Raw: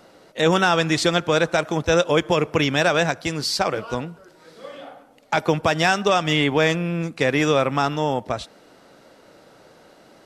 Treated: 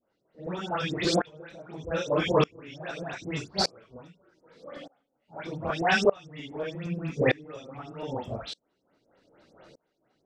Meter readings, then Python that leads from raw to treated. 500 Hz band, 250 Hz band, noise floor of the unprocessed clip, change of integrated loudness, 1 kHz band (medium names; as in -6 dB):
-8.5 dB, -9.5 dB, -52 dBFS, -8.5 dB, -10.5 dB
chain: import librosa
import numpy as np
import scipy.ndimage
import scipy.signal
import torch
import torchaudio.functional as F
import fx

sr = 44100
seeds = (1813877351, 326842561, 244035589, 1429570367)

y = fx.phase_scramble(x, sr, seeds[0], window_ms=100)
y = fx.filter_lfo_lowpass(y, sr, shape='square', hz=4.3, low_hz=450.0, high_hz=5700.0, q=0.71)
y = fx.dispersion(y, sr, late='highs', ms=118.0, hz=2100.0)
y = fx.tremolo_decay(y, sr, direction='swelling', hz=0.82, depth_db=28)